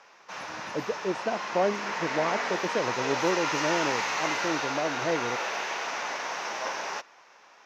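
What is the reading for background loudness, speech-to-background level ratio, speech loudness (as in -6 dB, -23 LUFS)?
-30.5 LUFS, -1.0 dB, -31.5 LUFS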